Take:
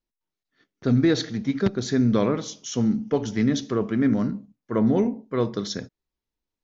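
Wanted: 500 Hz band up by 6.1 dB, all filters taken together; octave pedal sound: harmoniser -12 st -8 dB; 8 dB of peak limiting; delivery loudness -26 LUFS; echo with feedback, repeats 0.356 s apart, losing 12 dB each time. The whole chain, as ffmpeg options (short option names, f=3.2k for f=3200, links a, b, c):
-filter_complex "[0:a]equalizer=f=500:t=o:g=7.5,alimiter=limit=-13.5dB:level=0:latency=1,aecho=1:1:356|712|1068:0.251|0.0628|0.0157,asplit=2[a][b];[b]asetrate=22050,aresample=44100,atempo=2,volume=-8dB[c];[a][c]amix=inputs=2:normalize=0,volume=-2.5dB"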